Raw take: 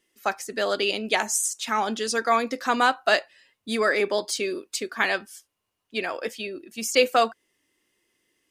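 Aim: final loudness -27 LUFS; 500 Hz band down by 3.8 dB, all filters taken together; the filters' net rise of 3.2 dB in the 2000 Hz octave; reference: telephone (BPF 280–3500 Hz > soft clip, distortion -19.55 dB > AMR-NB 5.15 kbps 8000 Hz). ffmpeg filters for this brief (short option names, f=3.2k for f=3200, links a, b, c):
-af "highpass=280,lowpass=3.5k,equalizer=f=500:t=o:g=-4.5,equalizer=f=2k:t=o:g=5,asoftclip=threshold=-10dB,volume=0.5dB" -ar 8000 -c:a libopencore_amrnb -b:a 5150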